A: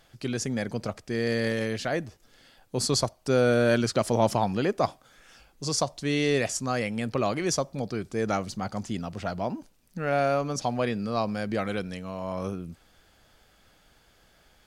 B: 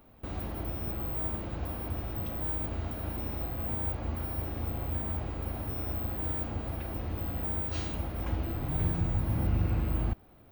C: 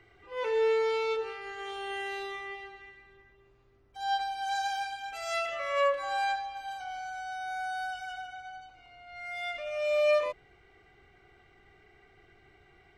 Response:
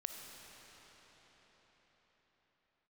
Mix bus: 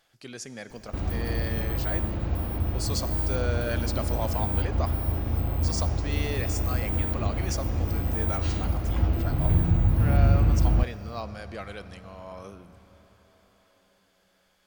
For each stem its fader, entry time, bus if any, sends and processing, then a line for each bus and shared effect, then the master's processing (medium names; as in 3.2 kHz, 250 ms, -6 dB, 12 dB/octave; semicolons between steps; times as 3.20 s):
-9.0 dB, 0.00 s, send -4 dB, bass shelf 370 Hz -10 dB
+0.5 dB, 0.70 s, send -9 dB, bass shelf 210 Hz +7.5 dB
mute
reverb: on, pre-delay 15 ms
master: none